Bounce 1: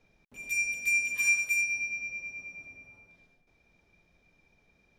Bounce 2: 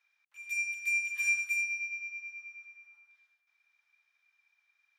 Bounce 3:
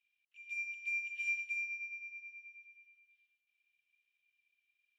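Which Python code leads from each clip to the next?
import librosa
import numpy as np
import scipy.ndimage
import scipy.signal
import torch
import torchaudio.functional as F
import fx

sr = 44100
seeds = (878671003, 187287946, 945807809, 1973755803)

y1 = scipy.signal.sosfilt(scipy.signal.butter(4, 1300.0, 'highpass', fs=sr, output='sos'), x)
y1 = fx.high_shelf(y1, sr, hz=3000.0, db=-8.5)
y2 = fx.ladder_bandpass(y1, sr, hz=3000.0, resonance_pct=75)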